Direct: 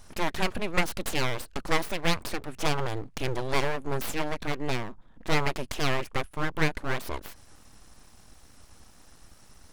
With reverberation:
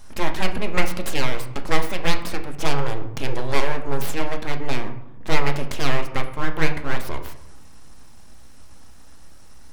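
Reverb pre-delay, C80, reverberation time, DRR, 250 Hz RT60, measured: 4 ms, 13.0 dB, 0.90 s, 5.0 dB, 1.3 s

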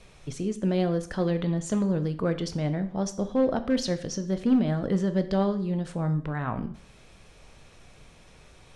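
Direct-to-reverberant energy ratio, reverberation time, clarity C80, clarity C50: 9.5 dB, 0.55 s, 17.5 dB, 14.0 dB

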